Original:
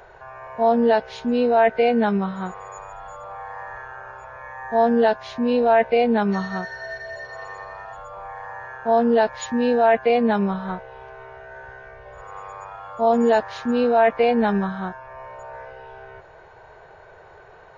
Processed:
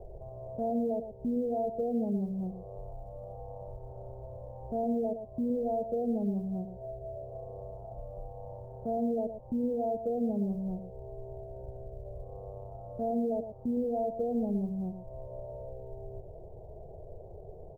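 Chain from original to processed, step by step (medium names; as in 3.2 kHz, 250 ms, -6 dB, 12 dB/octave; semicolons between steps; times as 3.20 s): elliptic low-pass 660 Hz, stop band 70 dB; tilt EQ -3 dB/octave; compression 2:1, threshold -39 dBFS, peak gain reduction 15 dB; short-mantissa float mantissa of 6-bit; echo from a far wall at 20 m, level -9 dB; trim -2 dB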